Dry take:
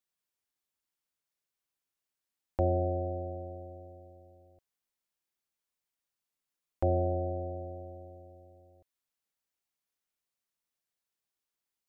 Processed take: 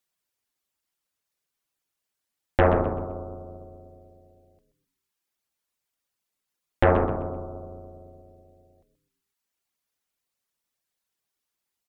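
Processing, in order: reverb removal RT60 0.79 s; Chebyshev shaper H 6 -7 dB, 8 -25 dB, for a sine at -15.5 dBFS; frequency-shifting echo 128 ms, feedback 36%, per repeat -120 Hz, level -10 dB; trim +7 dB

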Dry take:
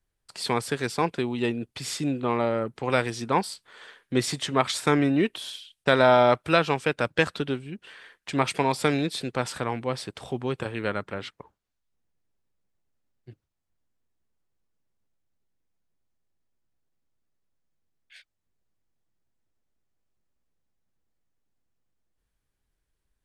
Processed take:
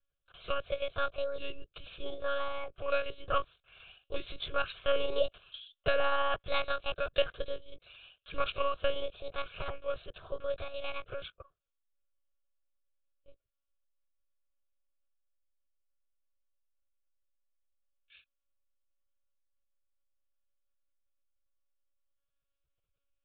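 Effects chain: sawtooth pitch modulation +10 st, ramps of 1384 ms; monotone LPC vocoder at 8 kHz 280 Hz; static phaser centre 1.3 kHz, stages 8; trim -3 dB

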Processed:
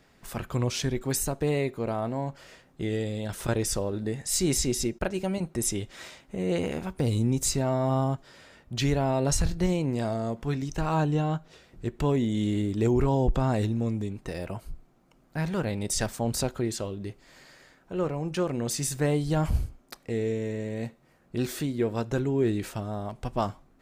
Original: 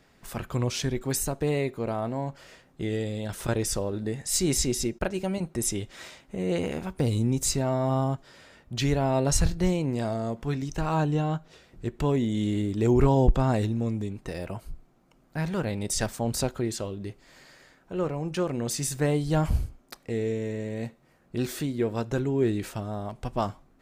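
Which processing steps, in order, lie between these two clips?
peak limiter -15.5 dBFS, peak gain reduction 5.5 dB

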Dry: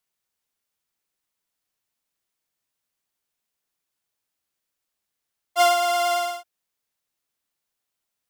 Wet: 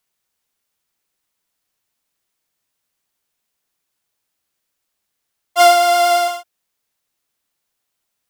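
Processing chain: 5.58–6.28 s: doubling 26 ms -6 dB; trim +6.5 dB

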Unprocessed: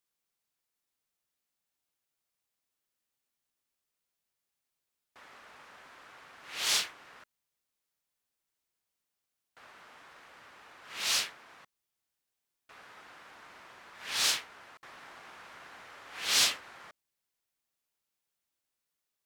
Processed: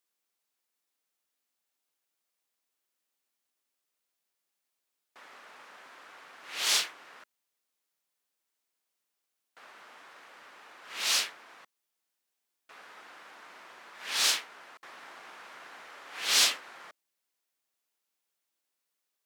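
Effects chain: high-pass 240 Hz 12 dB/octave; trim +2 dB

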